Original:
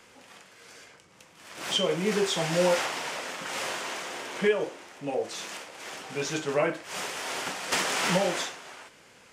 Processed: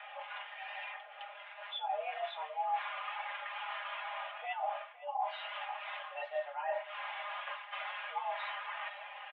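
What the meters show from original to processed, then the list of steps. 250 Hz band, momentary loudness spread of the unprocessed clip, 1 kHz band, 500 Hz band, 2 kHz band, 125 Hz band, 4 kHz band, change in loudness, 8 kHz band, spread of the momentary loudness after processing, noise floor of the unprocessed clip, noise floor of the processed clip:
under -40 dB, 15 LU, -2.0 dB, -14.5 dB, -8.0 dB, under -40 dB, -13.0 dB, -11.0 dB, under -40 dB, 7 LU, -56 dBFS, -51 dBFS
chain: mistuned SSB +300 Hz 230–3100 Hz; comb 4.9 ms, depth 73%; reverse; compression 16:1, threshold -47 dBFS, peak gain reduction 30.5 dB; reverse; on a send: delay 513 ms -11.5 dB; on the sum: spectral contrast expander 1.5:1; trim +11 dB

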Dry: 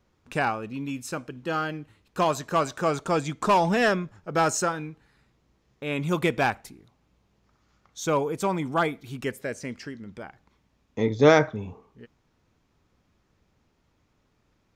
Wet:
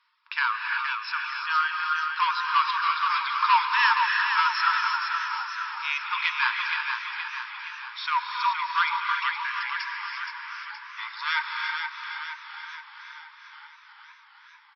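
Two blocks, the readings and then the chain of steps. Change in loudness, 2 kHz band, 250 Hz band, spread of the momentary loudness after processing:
0.0 dB, +7.0 dB, under -40 dB, 15 LU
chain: reverb removal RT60 1.5 s; in parallel at +2.5 dB: peak limiter -16.5 dBFS, peak gain reduction 11 dB; on the sum: saturation -12 dBFS, distortion -14 dB; brick-wall FIR band-pass 890–5500 Hz; on a send: feedback delay 471 ms, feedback 54%, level -6 dB; on the sum: gated-style reverb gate 380 ms rising, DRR 2.5 dB; modulated delay 452 ms, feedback 77%, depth 183 cents, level -17 dB

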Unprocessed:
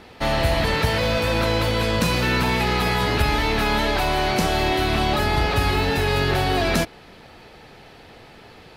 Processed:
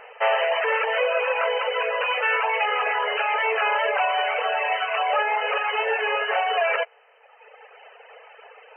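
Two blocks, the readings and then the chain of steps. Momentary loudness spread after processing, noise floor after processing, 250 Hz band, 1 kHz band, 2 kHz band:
2 LU, -54 dBFS, under -30 dB, +1.0 dB, +1.0 dB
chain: reverb removal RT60 1.5 s; brick-wall FIR band-pass 420–3100 Hz; trim +4 dB

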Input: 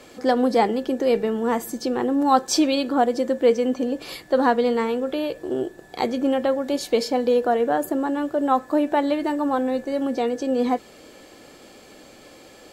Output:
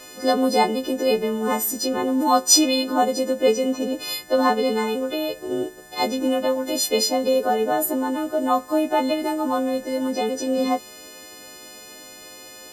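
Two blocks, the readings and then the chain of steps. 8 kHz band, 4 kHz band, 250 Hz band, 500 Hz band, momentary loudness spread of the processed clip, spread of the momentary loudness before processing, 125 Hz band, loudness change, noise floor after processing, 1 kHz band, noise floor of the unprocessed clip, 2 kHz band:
+12.0 dB, +7.0 dB, -0.5 dB, -0.5 dB, 20 LU, 7 LU, no reading, +1.0 dB, -42 dBFS, +0.5 dB, -48 dBFS, +1.5 dB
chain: partials quantised in pitch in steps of 3 st; dynamic bell 1.7 kHz, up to -5 dB, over -41 dBFS, Q 2.9

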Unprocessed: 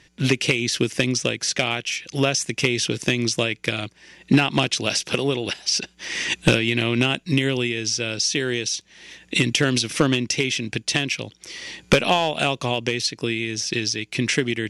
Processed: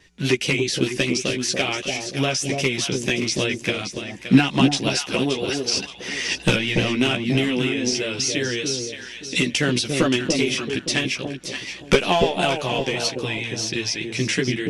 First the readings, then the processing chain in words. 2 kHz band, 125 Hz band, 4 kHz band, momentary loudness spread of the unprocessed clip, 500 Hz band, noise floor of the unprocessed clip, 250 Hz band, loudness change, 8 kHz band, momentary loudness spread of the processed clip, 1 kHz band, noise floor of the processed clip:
-0.5 dB, -0.5 dB, -0.5 dB, 7 LU, +1.0 dB, -57 dBFS, +1.5 dB, 0.0 dB, -0.5 dB, 7 LU, 0.0 dB, -39 dBFS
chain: chorus voices 6, 0.53 Hz, delay 13 ms, depth 2.9 ms; vibrato 5 Hz 44 cents; echo whose repeats swap between lows and highs 287 ms, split 800 Hz, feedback 52%, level -3 dB; trim +2 dB

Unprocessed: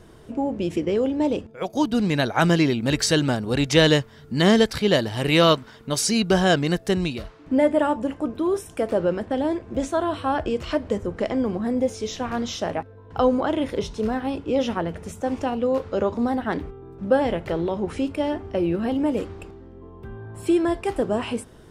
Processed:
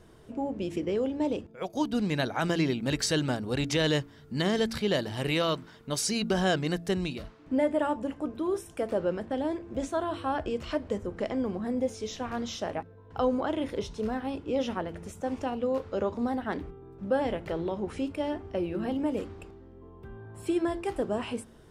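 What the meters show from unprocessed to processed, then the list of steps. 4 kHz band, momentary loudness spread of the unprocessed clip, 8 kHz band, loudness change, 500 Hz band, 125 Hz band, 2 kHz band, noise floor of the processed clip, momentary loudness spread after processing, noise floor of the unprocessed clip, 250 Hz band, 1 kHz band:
-8.0 dB, 11 LU, -6.5 dB, -7.5 dB, -7.5 dB, -8.0 dB, -8.0 dB, -53 dBFS, 9 LU, -47 dBFS, -7.5 dB, -7.5 dB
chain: de-hum 56.61 Hz, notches 6; peak limiter -10.5 dBFS, peak gain reduction 6 dB; trim -6.5 dB

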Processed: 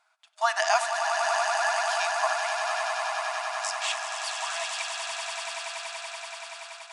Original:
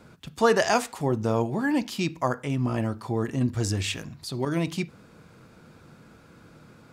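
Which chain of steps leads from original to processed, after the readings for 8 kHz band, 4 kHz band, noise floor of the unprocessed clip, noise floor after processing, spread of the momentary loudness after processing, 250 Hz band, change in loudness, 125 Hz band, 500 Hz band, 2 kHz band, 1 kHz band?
+5.5 dB, +5.0 dB, -53 dBFS, -56 dBFS, 11 LU, under -40 dB, -1.5 dB, under -40 dB, -4.0 dB, +5.5 dB, +4.5 dB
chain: echo with a slow build-up 95 ms, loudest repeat 8, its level -8 dB; gate -33 dBFS, range -11 dB; FFT band-pass 630–11000 Hz

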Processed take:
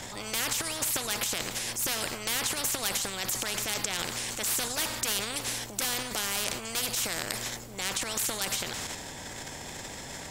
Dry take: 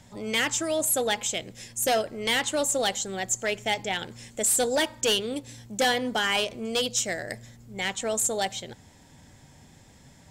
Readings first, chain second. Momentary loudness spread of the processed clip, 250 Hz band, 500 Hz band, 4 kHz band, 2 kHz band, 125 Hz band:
10 LU, -7.5 dB, -11.0 dB, -2.5 dB, -4.5 dB, 0.0 dB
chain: transient shaper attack -3 dB, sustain +10 dB; spectrum-flattening compressor 4:1

